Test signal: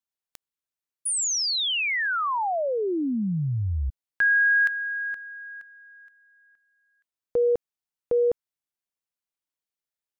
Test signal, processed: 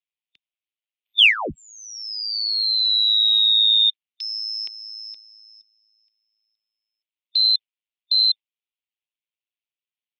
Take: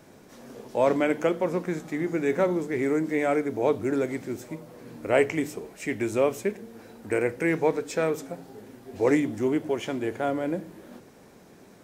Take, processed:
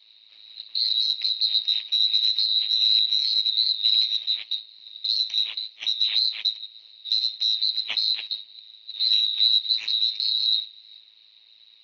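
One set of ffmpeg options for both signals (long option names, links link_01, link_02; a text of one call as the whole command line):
ffmpeg -i in.wav -filter_complex "[0:a]afftfilt=real='real(if(lt(b,736),b+184*(1-2*mod(floor(b/184),2)),b),0)':imag='imag(if(lt(b,736),b+184*(1-2*mod(floor(b/184),2)),b),0)':win_size=2048:overlap=0.75,agate=range=-9dB:threshold=-38dB:ratio=3:release=77:detection=rms,highpass=290,acrossover=split=730|1300[link_01][link_02][link_03];[link_02]acontrast=30[link_04];[link_01][link_04][link_03]amix=inputs=3:normalize=0,alimiter=limit=-19dB:level=0:latency=1:release=252,highpass=frequency=490:width_type=q:width=0.5412,highpass=frequency=490:width_type=q:width=1.307,lowpass=frequency=3400:width_type=q:width=0.5176,lowpass=frequency=3400:width_type=q:width=0.7071,lowpass=frequency=3400:width_type=q:width=1.932,afreqshift=-360,aeval=exprs='val(0)*sin(2*PI*54*n/s)':channel_layout=same,aexciter=amount=11.3:drive=6.1:freq=2300" out.wav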